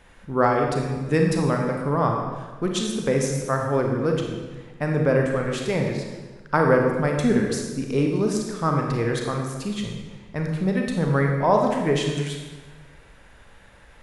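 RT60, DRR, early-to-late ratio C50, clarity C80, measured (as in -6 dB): 1.3 s, 1.0 dB, 2.5 dB, 4.5 dB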